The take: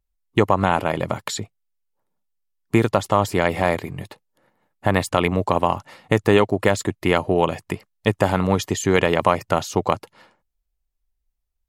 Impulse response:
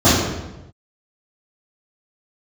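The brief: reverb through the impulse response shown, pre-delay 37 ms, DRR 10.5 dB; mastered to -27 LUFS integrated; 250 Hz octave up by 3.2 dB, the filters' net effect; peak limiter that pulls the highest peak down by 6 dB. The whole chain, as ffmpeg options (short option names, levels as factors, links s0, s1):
-filter_complex "[0:a]equalizer=f=250:t=o:g=4.5,alimiter=limit=0.447:level=0:latency=1,asplit=2[s0][s1];[1:a]atrim=start_sample=2205,adelay=37[s2];[s1][s2]afir=irnorm=-1:irlink=0,volume=0.0141[s3];[s0][s3]amix=inputs=2:normalize=0,volume=0.501"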